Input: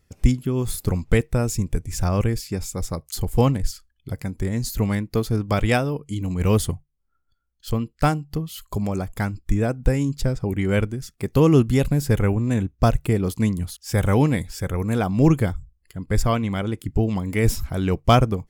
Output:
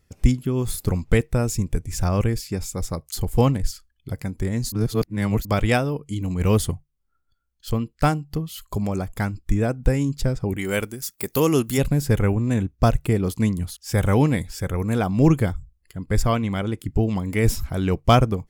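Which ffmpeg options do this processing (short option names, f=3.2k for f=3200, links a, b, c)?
-filter_complex "[0:a]asplit=3[a][b][c];[a]afade=t=out:st=10.56:d=0.02[d];[b]aemphasis=mode=production:type=bsi,afade=t=in:st=10.56:d=0.02,afade=t=out:st=11.77:d=0.02[e];[c]afade=t=in:st=11.77:d=0.02[f];[d][e][f]amix=inputs=3:normalize=0,asplit=3[g][h][i];[g]atrim=end=4.722[j];[h]atrim=start=4.718:end=5.452,asetpts=PTS-STARTPTS,areverse[k];[i]atrim=start=5.448[l];[j][k]acrossfade=d=0.004:c1=hsin:c2=hsin[m];[m][l]acrossfade=d=0.004:c1=hsin:c2=hsin"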